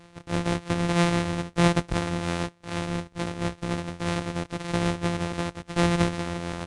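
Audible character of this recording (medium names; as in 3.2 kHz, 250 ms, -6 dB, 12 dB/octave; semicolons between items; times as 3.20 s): a buzz of ramps at a fixed pitch in blocks of 256 samples; tremolo triangle 6.2 Hz, depth 45%; Nellymoser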